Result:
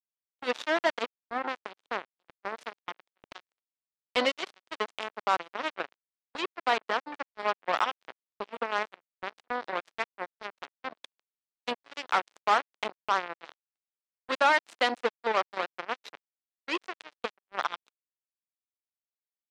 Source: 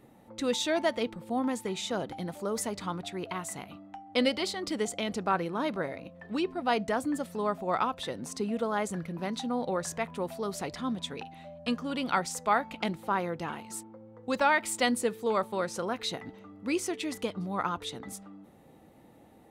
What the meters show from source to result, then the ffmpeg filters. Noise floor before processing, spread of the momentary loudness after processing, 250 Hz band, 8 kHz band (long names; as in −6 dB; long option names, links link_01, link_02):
−57 dBFS, 16 LU, −11.0 dB, −13.0 dB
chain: -af "acrusher=bits=3:mix=0:aa=0.5,highpass=400,lowpass=4000,agate=range=-20dB:threshold=-53dB:ratio=16:detection=peak,volume=2dB"